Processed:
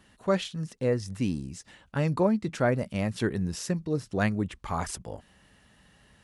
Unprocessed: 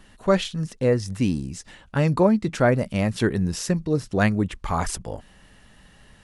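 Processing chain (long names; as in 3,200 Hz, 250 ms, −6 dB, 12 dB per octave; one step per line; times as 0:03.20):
high-pass filter 53 Hz
level −6 dB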